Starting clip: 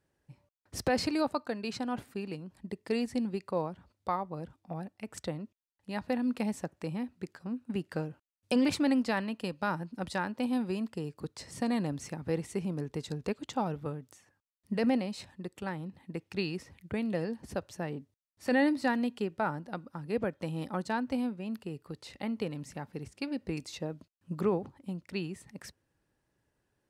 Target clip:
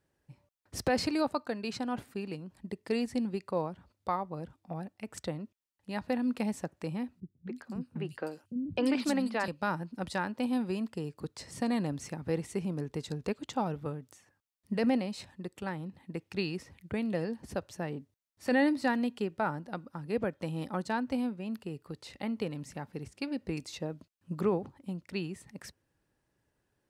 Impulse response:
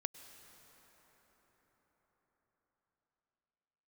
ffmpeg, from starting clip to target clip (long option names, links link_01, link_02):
-filter_complex "[0:a]asettb=1/sr,asplit=3[link_01][link_02][link_03];[link_01]atrim=end=7.204[link_04];[link_02]atrim=start=7.2:end=9.48,asetpts=PTS-STARTPTS,afade=type=in:duration=0.004:curve=qsin,afade=type=out:start_time=2.276:duration=0.004:curve=qsin,acrossover=split=230|3900[link_05][link_06][link_07];[link_06]adelay=260[link_08];[link_07]adelay=350[link_09];[link_05][link_08][link_09]amix=inputs=3:normalize=0,atrim=end_sample=100548[link_10];[link_03]atrim=start=9.476[link_11];[link_04][link_10]acrossfade=duration=0.004:curve1=hsin:curve2=qsin[link_12];[link_12][link_11]acrossfade=duration=0.004:curve1=qsin:curve2=hsin"